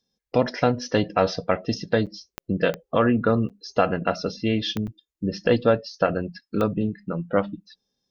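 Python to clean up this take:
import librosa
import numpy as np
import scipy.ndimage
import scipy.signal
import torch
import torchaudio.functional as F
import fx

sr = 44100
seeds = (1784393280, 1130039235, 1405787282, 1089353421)

y = fx.fix_declick_ar(x, sr, threshold=10.0)
y = fx.fix_interpolate(y, sr, at_s=(2.06, 3.49, 4.87), length_ms=7.2)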